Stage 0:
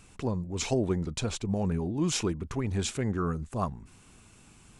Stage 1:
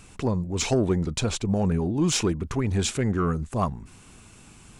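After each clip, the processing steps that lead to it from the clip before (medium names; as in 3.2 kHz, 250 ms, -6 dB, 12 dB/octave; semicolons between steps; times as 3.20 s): saturation -18 dBFS, distortion -24 dB; trim +6 dB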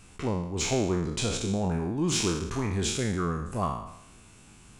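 spectral sustain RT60 0.79 s; trim -5.5 dB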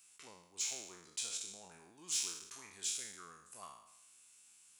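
differentiator; trim -4.5 dB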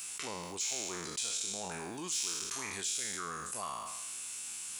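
level flattener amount 70%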